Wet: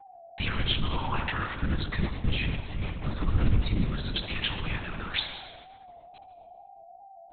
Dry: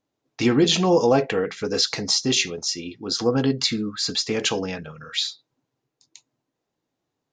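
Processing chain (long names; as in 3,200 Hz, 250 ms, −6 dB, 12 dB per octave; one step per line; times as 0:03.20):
elliptic band-stop filter 190–1,000 Hz
downward expander −43 dBFS
0:01.51–0:04.07: spectral tilt −4 dB per octave
downward compressor 2.5 to 1, threshold −30 dBFS, peak gain reduction 10.5 dB
bit reduction 7 bits
steady tone 730 Hz −51 dBFS
tape wow and flutter 140 cents
tape delay 76 ms, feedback 77%, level −5 dB, low-pass 1,200 Hz
convolution reverb RT60 1.4 s, pre-delay 116 ms, DRR 9.5 dB
linear-prediction vocoder at 8 kHz whisper
level +3 dB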